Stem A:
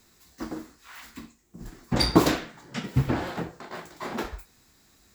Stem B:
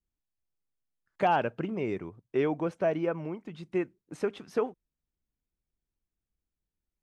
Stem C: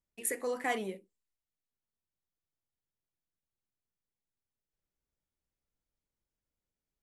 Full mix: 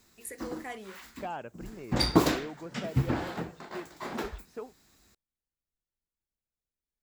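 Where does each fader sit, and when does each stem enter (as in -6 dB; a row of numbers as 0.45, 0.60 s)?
-3.5, -12.5, -8.0 dB; 0.00, 0.00, 0.00 s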